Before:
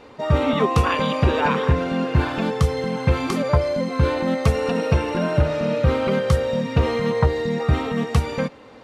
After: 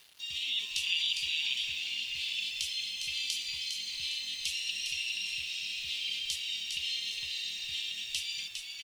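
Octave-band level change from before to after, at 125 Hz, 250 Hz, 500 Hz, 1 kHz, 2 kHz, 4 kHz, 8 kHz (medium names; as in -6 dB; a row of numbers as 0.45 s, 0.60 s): under -40 dB, under -40 dB, under -40 dB, under -40 dB, -7.5 dB, +4.5 dB, +2.5 dB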